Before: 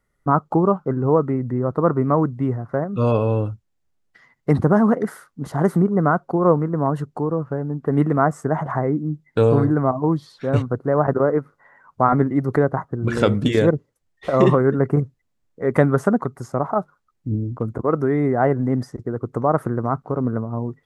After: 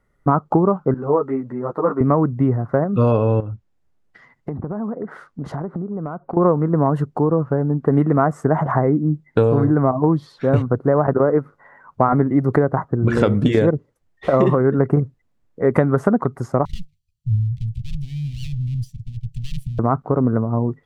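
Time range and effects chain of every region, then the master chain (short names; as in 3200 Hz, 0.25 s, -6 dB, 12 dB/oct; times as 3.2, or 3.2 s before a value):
0.94–2.01 HPF 450 Hz 6 dB/oct + ensemble effect
3.4–6.37 treble ducked by the level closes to 1200 Hz, closed at -16.5 dBFS + compressor 12:1, threshold -29 dBFS
16.65–19.79 minimum comb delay 0.68 ms + inverse Chebyshev band-stop 310–1500 Hz, stop band 50 dB
whole clip: high shelf 2800 Hz -10 dB; compressor, threshold -18 dBFS; gain +6.5 dB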